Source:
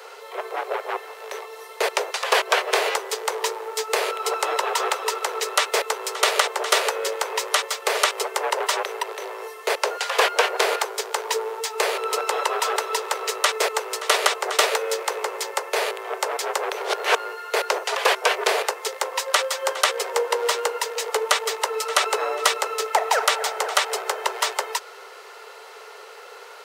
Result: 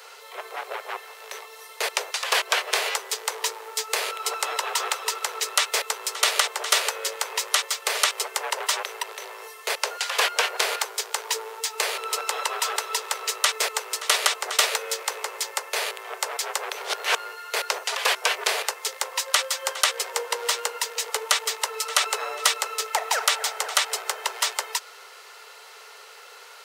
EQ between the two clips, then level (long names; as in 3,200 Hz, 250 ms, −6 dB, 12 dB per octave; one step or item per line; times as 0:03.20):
high-pass filter 650 Hz 6 dB per octave
high-shelf EQ 2,100 Hz +7.5 dB
−5.0 dB